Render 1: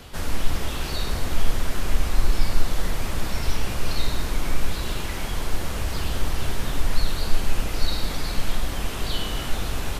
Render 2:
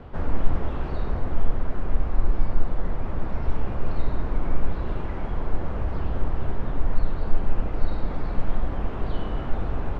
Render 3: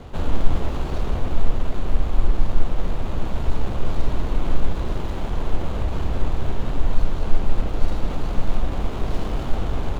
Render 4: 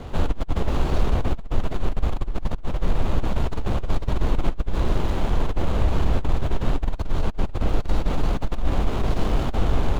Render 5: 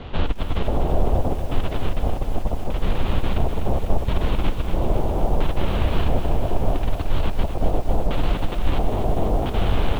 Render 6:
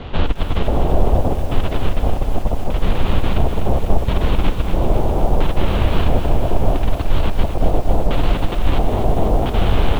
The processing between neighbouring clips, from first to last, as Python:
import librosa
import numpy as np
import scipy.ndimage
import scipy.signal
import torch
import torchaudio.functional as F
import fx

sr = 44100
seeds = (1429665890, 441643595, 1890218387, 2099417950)

y1 = scipy.signal.sosfilt(scipy.signal.butter(2, 1100.0, 'lowpass', fs=sr, output='sos'), x)
y1 = fx.rider(y1, sr, range_db=10, speed_s=2.0)
y2 = scipy.signal.medfilt(y1, 25)
y2 = fx.high_shelf(y2, sr, hz=2000.0, db=10.0)
y2 = y2 * librosa.db_to_amplitude(3.0)
y3 = fx.over_compress(y2, sr, threshold_db=-17.0, ratio=-0.5)
y4 = fx.filter_lfo_lowpass(y3, sr, shape='square', hz=0.74, low_hz=710.0, high_hz=3200.0, q=2.1)
y4 = fx.echo_crushed(y4, sr, ms=249, feedback_pct=80, bits=7, wet_db=-9)
y5 = y4 + 10.0 ** (-14.5 / 20.0) * np.pad(y4, (int(215 * sr / 1000.0), 0))[:len(y4)]
y5 = y5 * librosa.db_to_amplitude(4.5)